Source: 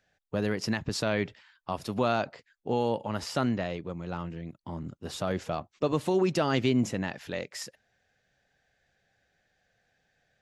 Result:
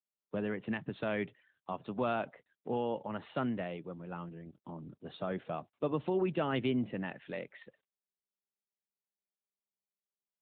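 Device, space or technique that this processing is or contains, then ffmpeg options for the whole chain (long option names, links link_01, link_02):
mobile call with aggressive noise cancelling: -filter_complex "[0:a]asettb=1/sr,asplit=3[link_01][link_02][link_03];[link_01]atrim=end=3.244[link_04];[link_02]atrim=start=3.24:end=4.12,asetpts=PTS-STARTPTS,afade=type=in:duration=0.004:curve=qsin,afade=type=out:start_time=0.876:duration=0.004:curve=qsin,equalizer=frequency=4900:width=2.5:gain=3.5[link_05];[link_03]atrim=start=4.116[link_06];[link_04][link_05]acrossfade=duration=0.004:curve1=hsin:curve2=qsin[link_07];[link_07][link_06]acrossfade=duration=0.004:curve1=qsin:curve2=hsin,highpass=frequency=120:width=0.5412,highpass=frequency=120:width=1.3066,afftdn=noise_reduction=32:noise_floor=-53,volume=-5.5dB" -ar 8000 -c:a libopencore_amrnb -b:a 12200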